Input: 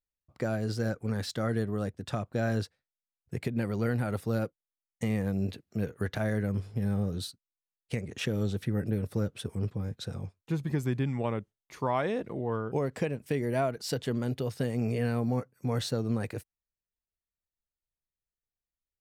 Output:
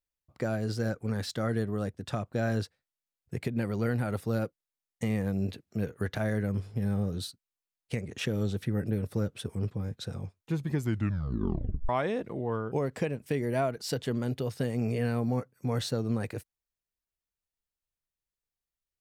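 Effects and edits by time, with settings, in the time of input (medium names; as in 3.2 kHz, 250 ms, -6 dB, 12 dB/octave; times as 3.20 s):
10.80 s: tape stop 1.09 s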